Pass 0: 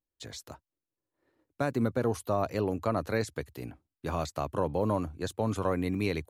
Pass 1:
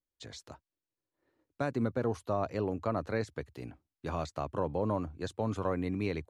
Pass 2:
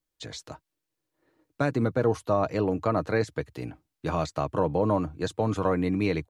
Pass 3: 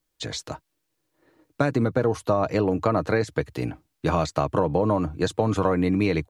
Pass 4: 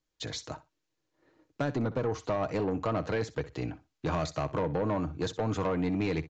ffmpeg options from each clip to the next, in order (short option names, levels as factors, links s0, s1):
-af "lowpass=7200,adynamicequalizer=threshold=0.00398:dfrequency=2300:dqfactor=0.7:tfrequency=2300:tqfactor=0.7:attack=5:release=100:ratio=0.375:range=2.5:mode=cutabove:tftype=highshelf,volume=0.708"
-af "aecho=1:1:6.4:0.32,volume=2.24"
-af "acompressor=threshold=0.0562:ratio=6,volume=2.37"
-af "aresample=16000,asoftclip=type=tanh:threshold=0.126,aresample=44100,aecho=1:1:62|124:0.15|0.0239,volume=0.562"